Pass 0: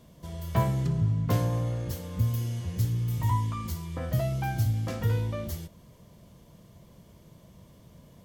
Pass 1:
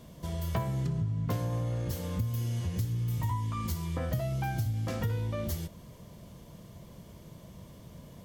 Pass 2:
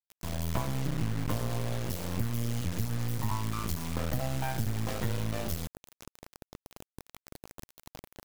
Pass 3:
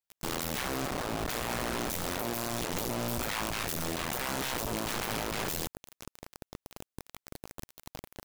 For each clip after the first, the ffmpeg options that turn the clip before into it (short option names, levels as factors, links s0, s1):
-af "acompressor=threshold=0.0224:ratio=5,volume=1.58"
-af "acrusher=bits=4:dc=4:mix=0:aa=0.000001,volume=1.5"
-af "aeval=exprs='(mod(26.6*val(0)+1,2)-1)/26.6':c=same,volume=1.41"